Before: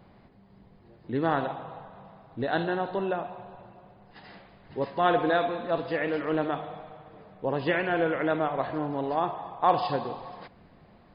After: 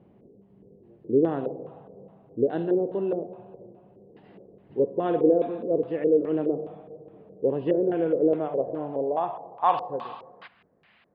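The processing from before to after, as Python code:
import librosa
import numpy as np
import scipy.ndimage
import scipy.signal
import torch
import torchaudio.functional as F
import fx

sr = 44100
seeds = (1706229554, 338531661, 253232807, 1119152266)

y = fx.filter_lfo_lowpass(x, sr, shape='square', hz=2.4, low_hz=470.0, high_hz=2900.0, q=3.1)
y = fx.bass_treble(y, sr, bass_db=12, treble_db=13)
y = fx.filter_sweep_bandpass(y, sr, from_hz=400.0, to_hz=1800.0, start_s=8.18, end_s=10.92, q=1.9)
y = fx.high_shelf(y, sr, hz=3700.0, db=fx.steps((0.0, -3.5), (9.64, 8.5)))
y = y * librosa.db_to_amplitude(1.5)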